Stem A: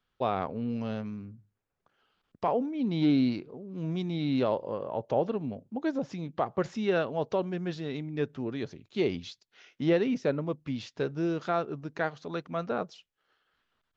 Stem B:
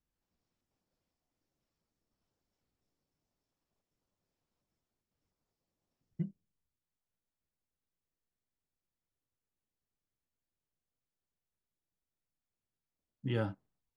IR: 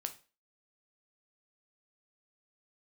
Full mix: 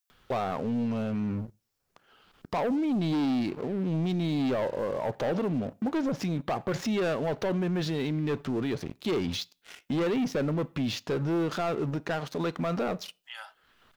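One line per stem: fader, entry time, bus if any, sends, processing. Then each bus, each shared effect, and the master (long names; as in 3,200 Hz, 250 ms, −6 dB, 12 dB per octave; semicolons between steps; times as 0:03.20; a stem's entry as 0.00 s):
+1.0 dB, 0.10 s, send −14 dB, leveller curve on the samples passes 3; upward compression, threshold −46 dBFS
−1.5 dB, 0.00 s, no send, elliptic high-pass filter 670 Hz, stop band 40 dB; spectral tilt +4 dB per octave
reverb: on, RT60 0.35 s, pre-delay 5 ms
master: brickwall limiter −23.5 dBFS, peak gain reduction 11.5 dB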